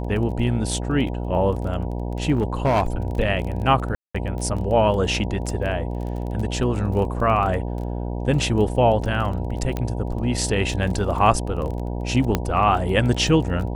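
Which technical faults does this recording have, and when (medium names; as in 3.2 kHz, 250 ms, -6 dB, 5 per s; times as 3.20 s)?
buzz 60 Hz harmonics 16 -27 dBFS
crackle 17 per s -29 dBFS
2.31–2.87 s: clipped -14 dBFS
3.95–4.14 s: dropout 195 ms
9.77 s: pop -13 dBFS
12.35 s: pop -6 dBFS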